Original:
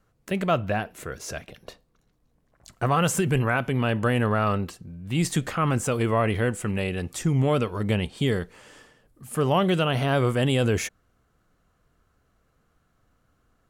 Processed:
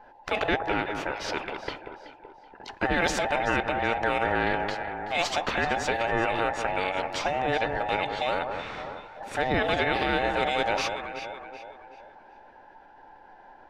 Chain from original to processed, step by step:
frequency inversion band by band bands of 1,000 Hz
high-frequency loss of the air 240 metres
formants moved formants −2 semitones
delay that swaps between a low-pass and a high-pass 189 ms, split 1,500 Hz, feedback 54%, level −11 dB
every bin compressed towards the loudest bin 2 to 1

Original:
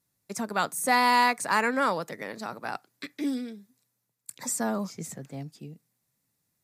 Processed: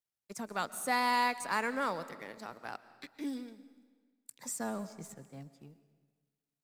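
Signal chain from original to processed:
mu-law and A-law mismatch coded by A
comb and all-pass reverb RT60 1.5 s, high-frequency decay 0.9×, pre-delay 90 ms, DRR 15 dB
level −7.5 dB

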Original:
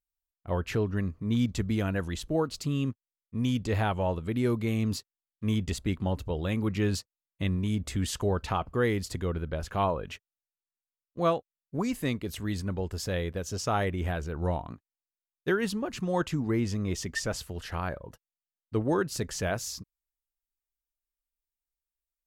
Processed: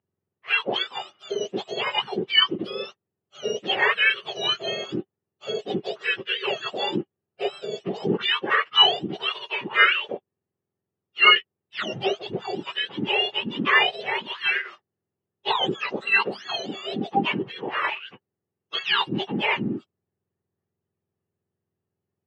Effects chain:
frequency axis turned over on the octave scale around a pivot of 1,200 Hz
loudspeaker in its box 250–3,200 Hz, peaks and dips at 270 Hz −7 dB, 390 Hz +9 dB, 790 Hz +4 dB, 1,200 Hz +4 dB, 1,800 Hz +8 dB, 2,900 Hz +10 dB
level +8 dB

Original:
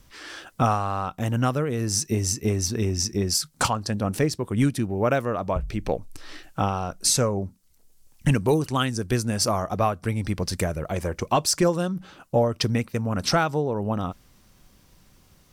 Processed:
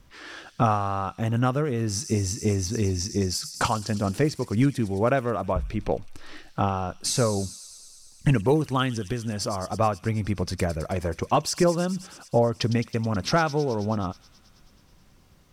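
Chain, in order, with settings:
high-shelf EQ 5,200 Hz −10 dB
0:08.96–0:09.80: downward compressor, threshold −25 dBFS, peak gain reduction 7 dB
delay with a high-pass on its return 107 ms, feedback 78%, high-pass 4,800 Hz, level −7.5 dB

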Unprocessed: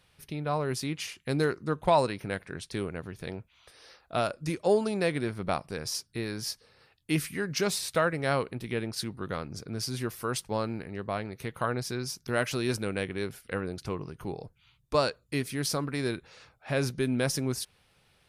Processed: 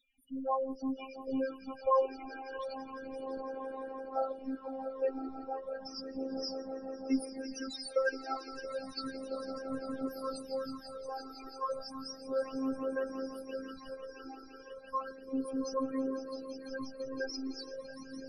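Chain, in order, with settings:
low-shelf EQ 430 Hz −10.5 dB
spectral peaks only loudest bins 4
echo that builds up and dies away 169 ms, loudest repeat 5, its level −16 dB
phases set to zero 266 Hz
all-pass phaser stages 12, 0.33 Hz, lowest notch 170–4,700 Hz
level +7 dB

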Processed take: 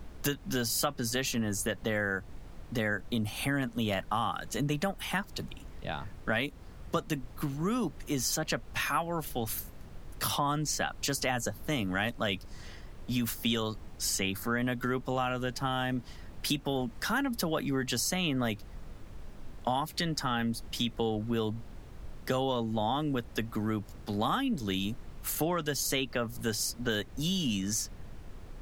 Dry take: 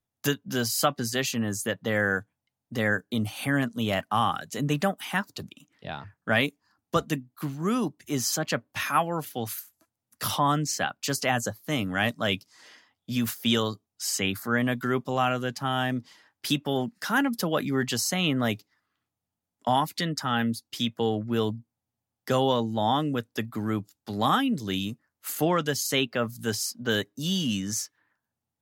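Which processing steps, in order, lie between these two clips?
background noise brown −43 dBFS
downward compressor 3 to 1, threshold −28 dBFS, peak gain reduction 8.5 dB

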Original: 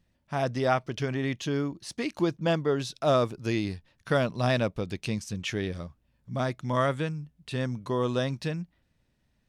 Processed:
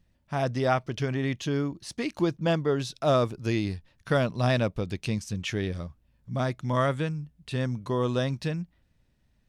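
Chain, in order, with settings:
low-shelf EQ 97 Hz +7 dB

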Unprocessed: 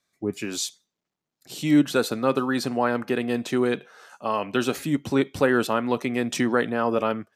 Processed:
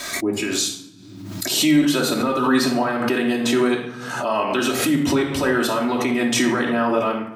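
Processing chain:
low-shelf EQ 400 Hz −6 dB
brickwall limiter −18 dBFS, peak gain reduction 9 dB
convolution reverb RT60 0.80 s, pre-delay 3 ms, DRR −2.5 dB
background raised ahead of every attack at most 44 dB per second
level +4 dB

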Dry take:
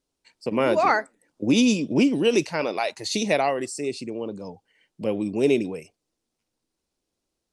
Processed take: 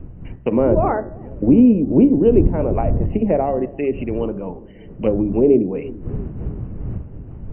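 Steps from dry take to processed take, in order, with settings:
wind on the microphone 120 Hz −34 dBFS
treble cut that deepens with the level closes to 550 Hz, closed at −20.5 dBFS
linear-phase brick-wall low-pass 3,100 Hz
hum removal 69.66 Hz, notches 28
on a send: delay with a low-pass on its return 340 ms, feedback 54%, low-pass 460 Hz, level −17 dB
on the sum: level +8.5 dB

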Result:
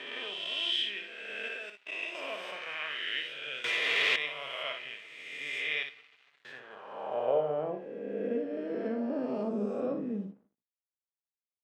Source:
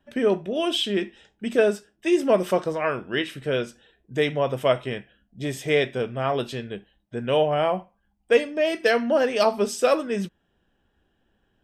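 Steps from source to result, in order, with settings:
peak hold with a rise ahead of every peak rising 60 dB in 2.26 s
0:05.83–0:06.45: guitar amp tone stack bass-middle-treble 6-0-2
on a send at −14 dB: convolution reverb RT60 1.9 s, pre-delay 4 ms
0:01.48–0:02.15: on the sum: output level in coarse steps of 20 dB
high-pass filter 50 Hz
parametric band 150 Hz +7.5 dB 0.23 octaves
dead-zone distortion −38 dBFS
ambience of single reflections 58 ms −7 dB, 73 ms −15 dB
0:03.64–0:04.16: leveller curve on the samples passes 5
band-pass filter sweep 2,600 Hz → 240 Hz, 0:06.17–0:08.03
level −6 dB

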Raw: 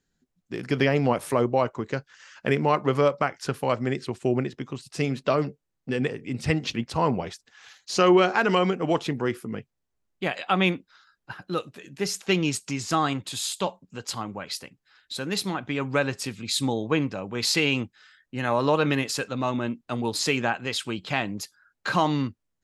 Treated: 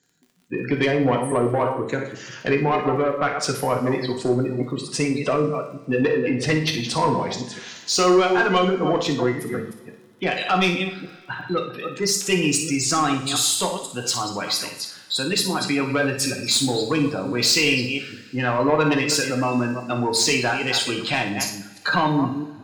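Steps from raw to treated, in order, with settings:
delay that plays each chunk backwards 165 ms, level −9.5 dB
high-pass filter 140 Hz 12 dB per octave
gate on every frequency bin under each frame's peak −20 dB strong
high-shelf EQ 3,600 Hz +9 dB
in parallel at +0.5 dB: downward compressor, threshold −29 dBFS, peak gain reduction 14.5 dB
0:06.02–0:06.55: on the sum: mid-hump overdrive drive 17 dB, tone 1,100 Hz, clips at −4 dBFS
soft clipping −13 dBFS, distortion −15 dB
surface crackle 30 per second −43 dBFS
on a send: flutter between parallel walls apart 9.9 metres, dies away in 0.33 s
on the sum: coupled-rooms reverb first 0.5 s, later 2.7 s, from −21 dB, DRR 3 dB

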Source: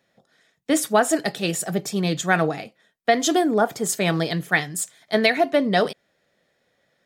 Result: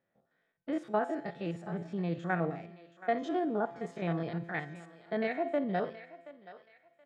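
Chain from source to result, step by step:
spectrum averaged block by block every 50 ms
low-pass filter 1,800 Hz 12 dB per octave
tuned comb filter 170 Hz, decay 1.3 s, mix 60%
on a send: feedback echo with a high-pass in the loop 726 ms, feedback 33%, high-pass 820 Hz, level −13.5 dB
on the sum: level −3 dB

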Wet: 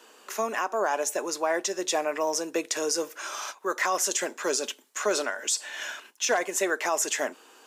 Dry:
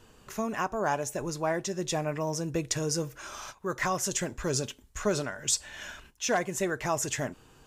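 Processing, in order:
Bessel high-pass filter 460 Hz, order 8
brickwall limiter −22.5 dBFS, peak gain reduction 8 dB
level +7 dB

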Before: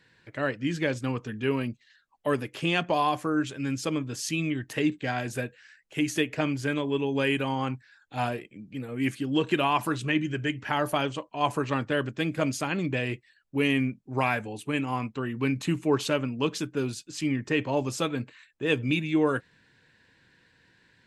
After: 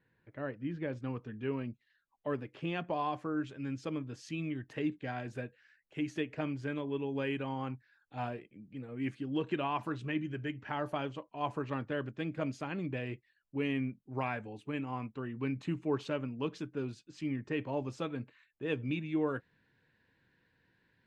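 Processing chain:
head-to-tape spacing loss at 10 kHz 42 dB, from 0:00.92 at 10 kHz 27 dB, from 0:02.98 at 10 kHz 20 dB
level −7.5 dB

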